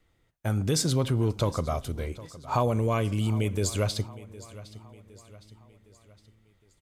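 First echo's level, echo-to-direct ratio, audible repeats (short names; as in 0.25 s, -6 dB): -18.0 dB, -17.0 dB, 3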